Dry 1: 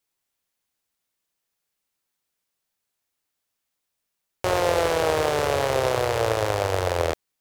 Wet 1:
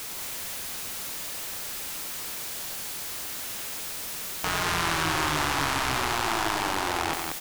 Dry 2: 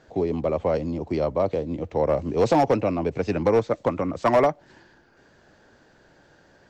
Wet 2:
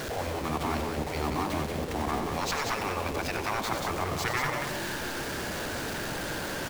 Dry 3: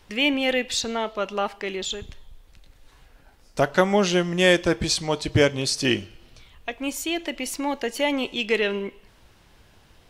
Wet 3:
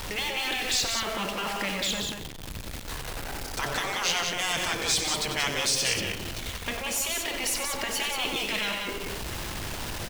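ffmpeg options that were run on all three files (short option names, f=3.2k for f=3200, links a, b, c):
-af "aeval=exprs='val(0)+0.5*0.0316*sgn(val(0))':c=same,afftfilt=real='re*lt(hypot(re,im),0.224)':imag='im*lt(hypot(re,im),0.224)':win_size=1024:overlap=0.75,aecho=1:1:93.29|183.7:0.355|0.562"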